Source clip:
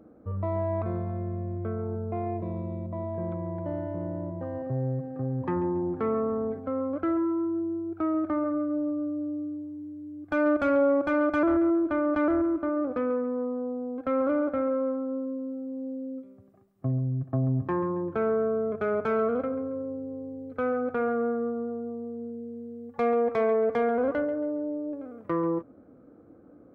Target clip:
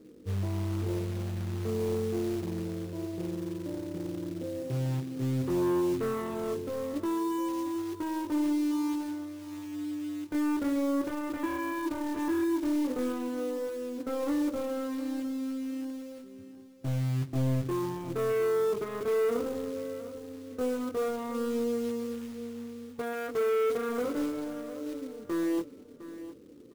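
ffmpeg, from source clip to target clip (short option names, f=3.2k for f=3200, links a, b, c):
-filter_complex "[0:a]lowpass=2.6k,lowshelf=f=550:t=q:w=3:g=8.5,aresample=8000,volume=17.5dB,asoftclip=hard,volume=-17.5dB,aresample=44100,flanger=delay=20:depth=5.1:speed=0.13,acrusher=bits=4:mode=log:mix=0:aa=0.000001,asplit=2[a][b];[b]aecho=0:1:708|1416|2124:0.2|0.0519|0.0135[c];[a][c]amix=inputs=2:normalize=0,volume=-7.5dB"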